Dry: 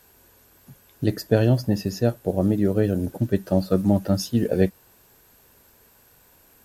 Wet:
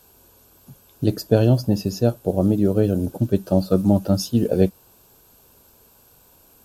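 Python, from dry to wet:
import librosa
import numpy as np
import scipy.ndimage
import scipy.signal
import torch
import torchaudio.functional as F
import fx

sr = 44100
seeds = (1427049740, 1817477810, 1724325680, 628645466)

y = fx.peak_eq(x, sr, hz=1900.0, db=-14.5, octaves=0.41)
y = y * librosa.db_to_amplitude(2.5)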